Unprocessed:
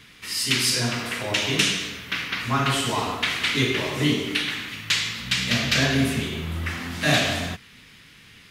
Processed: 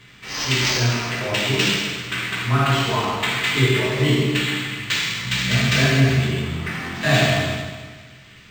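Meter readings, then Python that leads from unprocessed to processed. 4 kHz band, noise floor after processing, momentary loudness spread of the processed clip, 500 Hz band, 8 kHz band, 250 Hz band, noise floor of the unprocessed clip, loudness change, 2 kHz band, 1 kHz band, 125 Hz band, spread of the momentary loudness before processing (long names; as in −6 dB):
+1.5 dB, −46 dBFS, 9 LU, +5.5 dB, −0.5 dB, +3.0 dB, −50 dBFS, +3.5 dB, +3.5 dB, +3.5 dB, +8.0 dB, 9 LU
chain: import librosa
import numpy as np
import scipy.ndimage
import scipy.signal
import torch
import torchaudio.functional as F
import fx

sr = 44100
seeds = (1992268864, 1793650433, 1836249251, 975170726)

y = fx.rev_fdn(x, sr, rt60_s=1.5, lf_ratio=1.05, hf_ratio=0.95, size_ms=46.0, drr_db=-2.0)
y = np.interp(np.arange(len(y)), np.arange(len(y))[::4], y[::4])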